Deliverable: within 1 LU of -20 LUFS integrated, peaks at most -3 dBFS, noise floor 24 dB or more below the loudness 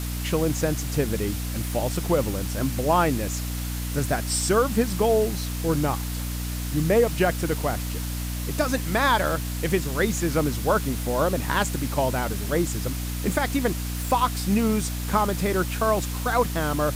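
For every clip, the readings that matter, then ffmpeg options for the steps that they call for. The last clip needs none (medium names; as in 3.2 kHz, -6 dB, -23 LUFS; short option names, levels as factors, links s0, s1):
hum 60 Hz; highest harmonic 300 Hz; hum level -27 dBFS; noise floor -30 dBFS; noise floor target -49 dBFS; loudness -24.5 LUFS; peak level -8.5 dBFS; loudness target -20.0 LUFS
-> -af "bandreject=f=60:t=h:w=4,bandreject=f=120:t=h:w=4,bandreject=f=180:t=h:w=4,bandreject=f=240:t=h:w=4,bandreject=f=300:t=h:w=4"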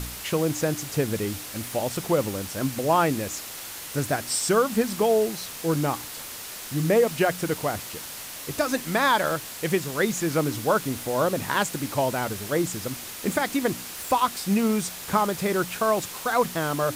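hum not found; noise floor -38 dBFS; noise floor target -50 dBFS
-> -af "afftdn=nr=12:nf=-38"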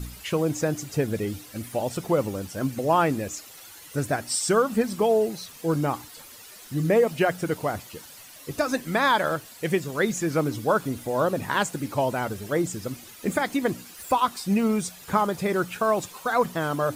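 noise floor -46 dBFS; noise floor target -50 dBFS
-> -af "afftdn=nr=6:nf=-46"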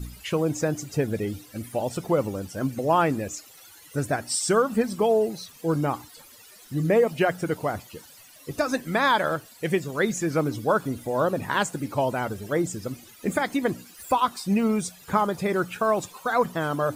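noise floor -50 dBFS; loudness -25.5 LUFS; peak level -9.5 dBFS; loudness target -20.0 LUFS
-> -af "volume=1.88"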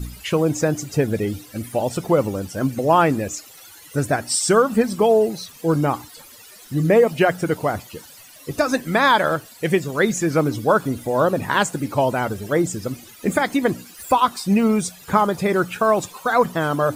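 loudness -20.5 LUFS; peak level -4.0 dBFS; noise floor -45 dBFS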